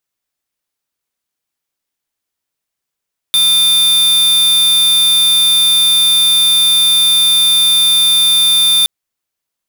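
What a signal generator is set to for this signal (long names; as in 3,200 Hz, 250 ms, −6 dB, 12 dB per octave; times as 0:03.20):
tone square 3,580 Hz −10 dBFS 5.52 s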